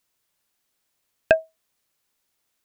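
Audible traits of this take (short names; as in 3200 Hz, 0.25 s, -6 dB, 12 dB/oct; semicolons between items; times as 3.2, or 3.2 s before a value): noise floor -76 dBFS; spectral tilt -2.0 dB/oct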